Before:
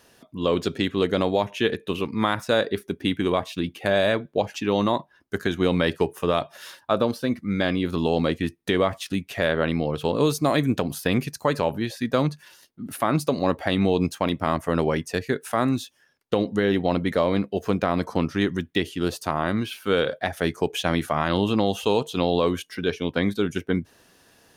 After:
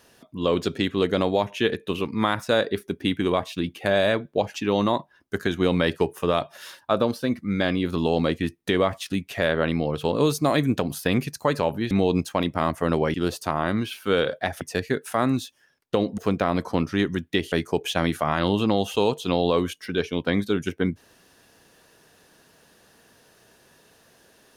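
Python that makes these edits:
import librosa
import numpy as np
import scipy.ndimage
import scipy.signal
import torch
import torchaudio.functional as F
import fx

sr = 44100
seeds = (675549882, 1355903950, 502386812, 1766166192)

y = fx.edit(x, sr, fx.cut(start_s=11.91, length_s=1.86),
    fx.cut(start_s=16.57, length_s=1.03),
    fx.move(start_s=18.94, length_s=1.47, to_s=15.0), tone=tone)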